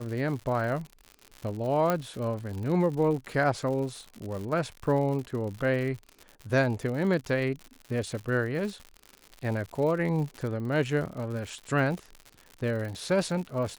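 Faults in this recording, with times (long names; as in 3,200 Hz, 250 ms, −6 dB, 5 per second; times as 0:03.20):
surface crackle 110 per second −35 dBFS
0:01.90: click −12 dBFS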